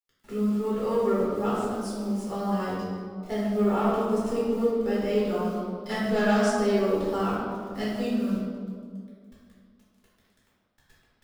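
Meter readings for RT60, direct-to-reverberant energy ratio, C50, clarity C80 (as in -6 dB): 2.0 s, -8.5 dB, -1.5 dB, 1.0 dB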